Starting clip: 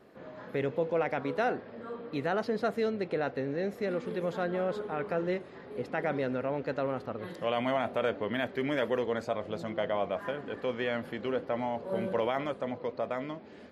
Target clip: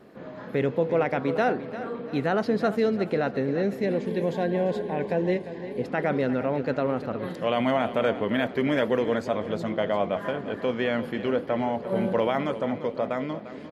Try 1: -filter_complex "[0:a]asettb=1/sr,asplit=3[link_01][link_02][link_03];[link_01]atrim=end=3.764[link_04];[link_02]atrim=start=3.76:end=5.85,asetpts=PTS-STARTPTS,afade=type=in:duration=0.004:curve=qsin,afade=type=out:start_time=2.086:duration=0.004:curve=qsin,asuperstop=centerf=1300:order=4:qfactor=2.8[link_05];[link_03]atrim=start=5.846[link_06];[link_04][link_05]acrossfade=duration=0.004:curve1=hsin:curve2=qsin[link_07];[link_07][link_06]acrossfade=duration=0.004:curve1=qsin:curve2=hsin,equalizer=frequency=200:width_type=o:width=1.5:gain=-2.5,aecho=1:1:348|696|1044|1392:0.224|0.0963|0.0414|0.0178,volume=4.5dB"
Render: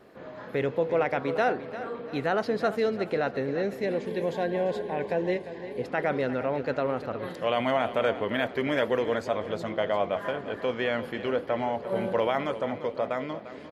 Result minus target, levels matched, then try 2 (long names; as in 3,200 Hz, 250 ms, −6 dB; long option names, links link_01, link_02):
250 Hz band −3.5 dB
-filter_complex "[0:a]asettb=1/sr,asplit=3[link_01][link_02][link_03];[link_01]atrim=end=3.764[link_04];[link_02]atrim=start=3.76:end=5.85,asetpts=PTS-STARTPTS,afade=type=in:duration=0.004:curve=qsin,afade=type=out:start_time=2.086:duration=0.004:curve=qsin,asuperstop=centerf=1300:order=4:qfactor=2.8[link_05];[link_03]atrim=start=5.846[link_06];[link_04][link_05]acrossfade=duration=0.004:curve1=hsin:curve2=qsin[link_07];[link_07][link_06]acrossfade=duration=0.004:curve1=qsin:curve2=hsin,equalizer=frequency=200:width_type=o:width=1.5:gain=4.5,aecho=1:1:348|696|1044|1392:0.224|0.0963|0.0414|0.0178,volume=4.5dB"